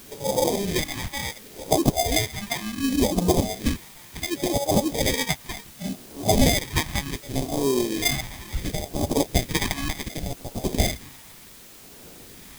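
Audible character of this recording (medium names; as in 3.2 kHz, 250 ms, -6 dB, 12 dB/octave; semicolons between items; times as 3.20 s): aliases and images of a low sample rate 1.4 kHz, jitter 0%; tremolo triangle 0.66 Hz, depth 75%; phasing stages 2, 0.69 Hz, lowest notch 460–1800 Hz; a quantiser's noise floor 10-bit, dither triangular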